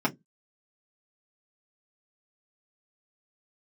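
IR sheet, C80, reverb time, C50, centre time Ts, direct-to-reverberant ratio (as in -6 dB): 37.5 dB, 0.15 s, 24.5 dB, 6 ms, -5.0 dB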